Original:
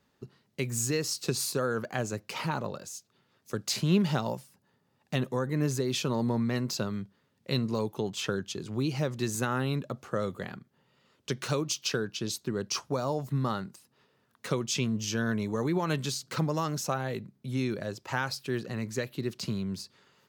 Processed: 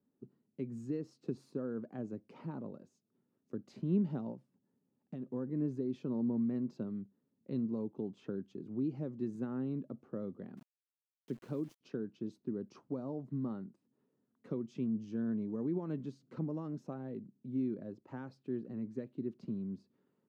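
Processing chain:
0:04.31–0:05.32: downward compressor 10 to 1, threshold −31 dBFS, peak gain reduction 8 dB
resonant band-pass 260 Hz, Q 2.1
0:10.57–0:11.81: centre clipping without the shift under −56 dBFS
level −2 dB

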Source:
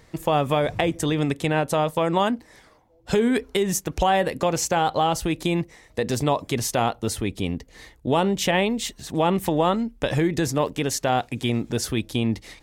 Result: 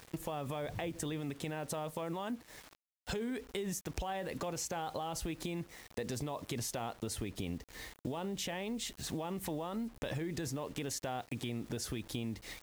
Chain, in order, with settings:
brickwall limiter −18.5 dBFS, peak gain reduction 11.5 dB
bit-depth reduction 8 bits, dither none
downward compressor 5 to 1, threshold −33 dBFS, peak gain reduction 10 dB
level −3 dB

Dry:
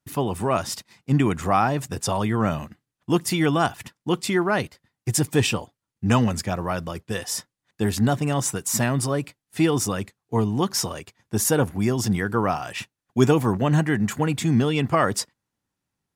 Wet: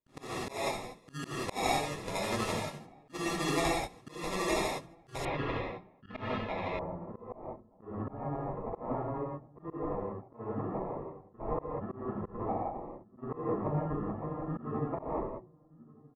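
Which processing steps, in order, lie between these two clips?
decimation without filtering 29×
parametric band 86 Hz −9.5 dB 0.87 octaves
mains-hum notches 60/120/180/240/300/360 Hz
amplitude tremolo 12 Hz, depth 88%
slap from a distant wall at 210 metres, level −28 dB
convolution reverb, pre-delay 3 ms, DRR −5.5 dB
dynamic equaliser 190 Hz, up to −7 dB, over −32 dBFS, Q 0.79
low-pass filter 11,000 Hz 24 dB per octave, from 0:05.25 3,100 Hz, from 0:06.79 1,100 Hz
volume swells 193 ms
level −8.5 dB

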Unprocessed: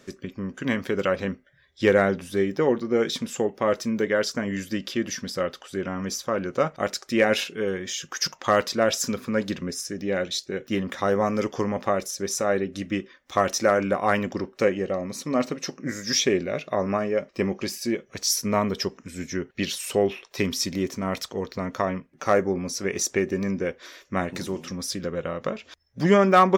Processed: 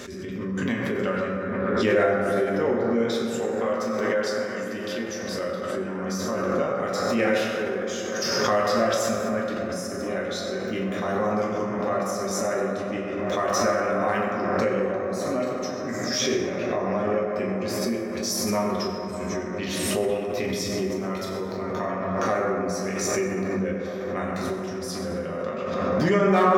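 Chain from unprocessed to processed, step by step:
0:03.34–0:05.08: low-shelf EQ 280 Hz −10.5 dB
delay with a low-pass on its return 790 ms, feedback 73%, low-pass 1,600 Hz, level −13 dB
convolution reverb RT60 2.9 s, pre-delay 6 ms, DRR −5.5 dB
background raised ahead of every attack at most 21 dB per second
level −8.5 dB

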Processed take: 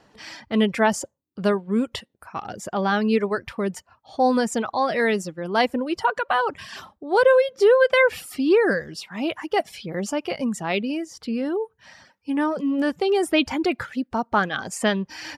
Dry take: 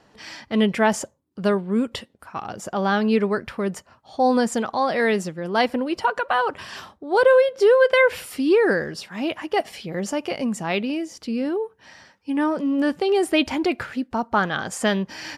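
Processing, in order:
reverb reduction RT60 0.58 s

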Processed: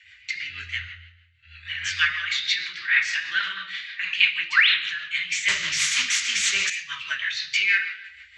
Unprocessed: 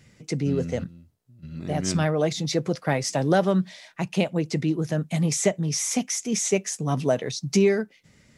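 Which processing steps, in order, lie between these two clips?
0:04.44–0:04.69: sound drawn into the spectrogram rise 500–4,400 Hz −28 dBFS
inverse Chebyshev band-stop filter 130–770 Hz, stop band 50 dB
low shelf with overshoot 210 Hz +6.5 dB, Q 1.5
mains-hum notches 50/100/150/200 Hz
convolution reverb RT60 0.90 s, pre-delay 3 ms, DRR −4.5 dB
rotating-speaker cabinet horn 6.3 Hz
three-way crossover with the lows and the highs turned down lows −15 dB, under 190 Hz, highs −16 dB, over 4,500 Hz
0:05.48–0:06.70: every bin compressed towards the loudest bin 2 to 1
level +3 dB

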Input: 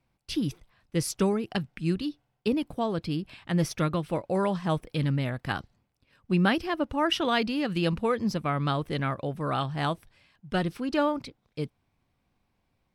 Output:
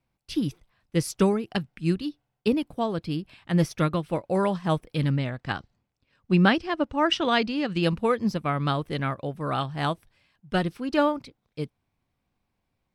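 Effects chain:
0:05.10–0:07.83: low-pass filter 8,100 Hz 24 dB per octave
expander for the loud parts 1.5 to 1, over −37 dBFS
level +4.5 dB

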